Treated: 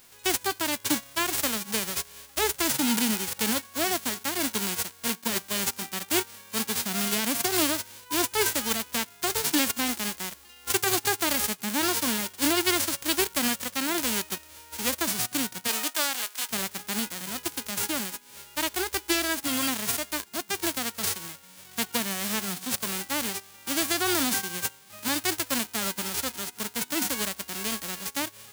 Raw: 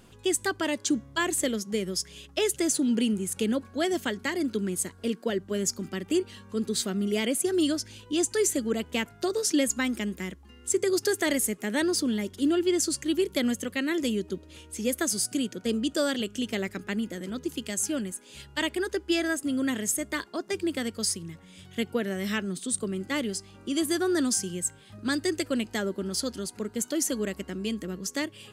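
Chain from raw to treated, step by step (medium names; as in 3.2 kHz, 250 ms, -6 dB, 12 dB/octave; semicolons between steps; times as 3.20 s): formants flattened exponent 0.1; 15.67–16.49 s: high-pass 360 Hz -> 880 Hz 12 dB/octave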